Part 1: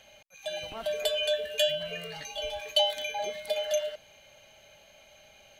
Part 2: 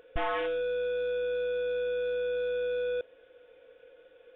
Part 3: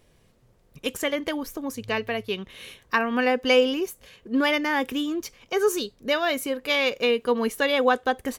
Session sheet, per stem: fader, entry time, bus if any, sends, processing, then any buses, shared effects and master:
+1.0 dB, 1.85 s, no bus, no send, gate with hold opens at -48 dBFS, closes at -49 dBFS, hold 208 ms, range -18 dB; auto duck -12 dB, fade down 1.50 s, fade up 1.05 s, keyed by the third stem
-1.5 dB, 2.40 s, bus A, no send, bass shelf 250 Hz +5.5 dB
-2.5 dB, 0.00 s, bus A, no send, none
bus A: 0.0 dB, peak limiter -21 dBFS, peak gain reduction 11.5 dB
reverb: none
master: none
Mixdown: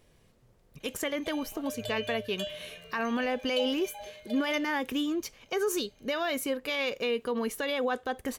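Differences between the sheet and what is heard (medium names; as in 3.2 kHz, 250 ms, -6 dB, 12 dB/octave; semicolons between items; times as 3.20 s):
stem 1: entry 1.85 s -> 0.80 s; stem 2: muted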